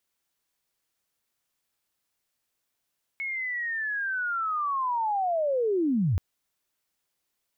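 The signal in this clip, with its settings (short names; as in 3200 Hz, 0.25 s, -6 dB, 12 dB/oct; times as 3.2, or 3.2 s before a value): chirp linear 2200 Hz -> 75 Hz -29 dBFS -> -21 dBFS 2.98 s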